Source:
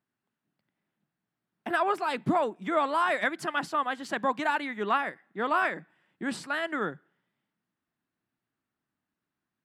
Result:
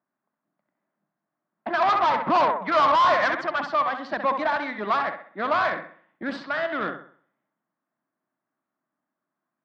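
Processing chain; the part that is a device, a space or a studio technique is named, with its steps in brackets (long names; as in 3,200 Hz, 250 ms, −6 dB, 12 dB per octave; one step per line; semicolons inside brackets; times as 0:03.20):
low-pass that shuts in the quiet parts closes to 1,700 Hz, open at −25 dBFS
high-pass filter 210 Hz 12 dB per octave
0:01.82–0:03.42: octave-band graphic EQ 1,000/2,000/4,000 Hz +12/+4/−8 dB
analogue delay pedal into a guitar amplifier (bucket-brigade delay 65 ms, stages 2,048, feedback 40%, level −9 dB; tube saturation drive 26 dB, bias 0.6; loudspeaker in its box 99–4,600 Hz, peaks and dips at 430 Hz −5 dB, 620 Hz +7 dB, 1,100 Hz +5 dB, 2,800 Hz −5 dB)
level +6 dB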